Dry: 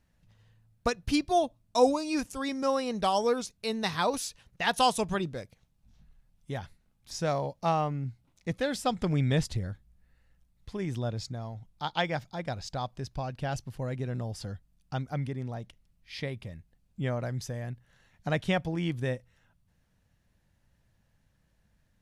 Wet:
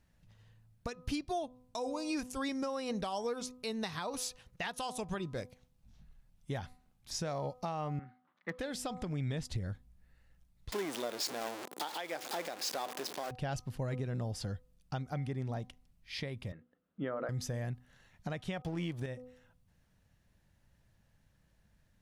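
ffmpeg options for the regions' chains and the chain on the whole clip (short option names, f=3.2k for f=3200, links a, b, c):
-filter_complex "[0:a]asettb=1/sr,asplit=3[a][b][c];[a]atrim=end=7.994[d];[b]atrim=start=7.99:end=8.59,asetpts=PTS-STARTPTS,afade=t=in:d=0.004:c=qsin,afade=t=out:st=0.596:d=0.004:c=qsin,highpass=f=230:w=0.5412,highpass=f=230:w=1.3066,equalizer=f=270:t=q:w=4:g=-10,equalizer=f=410:t=q:w=4:g=-8,equalizer=f=690:t=q:w=4:g=-5,equalizer=f=1.2k:t=q:w=4:g=10,equalizer=f=1.7k:t=q:w=4:g=8,equalizer=f=2.5k:t=q:w=4:g=-8,lowpass=f=2.9k:w=0.5412,lowpass=f=2.9k:w=1.3066,asoftclip=type=hard:threshold=-26dB[e];[c]atrim=start=8.586[f];[d][e]acrossfade=d=0.004:c1=hsin:c2=qsin[g];[g][f]acrossfade=d=0.004:c1=qsin:c2=hsin,asettb=1/sr,asplit=3[h][i][j];[h]atrim=end=10.724[k];[i]atrim=start=10.72:end=13.31,asetpts=PTS-STARTPTS,afade=t=in:d=0.004:c=qsin,afade=t=out:st=2.586:d=0.004:c=qsin,aeval=exprs='val(0)+0.5*0.0316*sgn(val(0))':c=same,highpass=f=300:w=0.5412,highpass=f=300:w=1.3066[l];[j]atrim=start=13.306[m];[k][l]acrossfade=d=0.004:c1=hsin:c2=qsin[n];[n][m]acrossfade=d=0.004:c1=qsin:c2=hsin,asettb=1/sr,asplit=3[o][p][q];[o]atrim=end=16.524[r];[p]atrim=start=16.52:end=17.29,asetpts=PTS-STARTPTS,afade=t=in:d=0.004:c=qsin,afade=t=out:st=0.766:d=0.004:c=qsin,highpass=240,equalizer=f=290:t=q:w=4:g=7,equalizer=f=490:t=q:w=4:g=6,equalizer=f=830:t=q:w=4:g=-4,equalizer=f=1.3k:t=q:w=4:g=9,equalizer=f=2.4k:t=q:w=4:g=-9,lowpass=f=3k:w=0.5412,lowpass=f=3k:w=1.3066,bandreject=f=60:t=h:w=6,bandreject=f=120:t=h:w=6,bandreject=f=180:t=h:w=6,bandreject=f=240:t=h:w=6,bandreject=f=300:t=h:w=6,bandreject=f=360:t=h:w=6,bandreject=f=420:t=h:w=6,bandreject=f=480:t=h:w=6[s];[q]atrim=start=17.286[t];[r][s]acrossfade=d=0.004:c1=hsin:c2=qsin[u];[u][t]acrossfade=d=0.004:c1=qsin:c2=hsin,asettb=1/sr,asplit=3[v][w][x];[v]atrim=end=18.614[y];[w]atrim=start=18.61:end=19.06,asetpts=PTS-STARTPTS,afade=t=in:d=0.004:c=qsin,afade=t=out:st=0.446:d=0.004:c=qsin,highpass=f=51:p=1,acontrast=82,aeval=exprs='sgn(val(0))*max(abs(val(0))-0.00841,0)':c=same[z];[x]atrim=start=19.056[aa];[y][z]acrossfade=d=0.004:c1=hsin:c2=qsin[ab];[ab][aa]acrossfade=d=0.004:c1=qsin:c2=hsin,bandreject=f=251.4:t=h:w=4,bandreject=f=502.8:t=h:w=4,bandreject=f=754.2:t=h:w=4,bandreject=f=1.0056k:t=h:w=4,bandreject=f=1.257k:t=h:w=4,acompressor=threshold=-31dB:ratio=6,alimiter=level_in=2.5dB:limit=-24dB:level=0:latency=1:release=233,volume=-2.5dB"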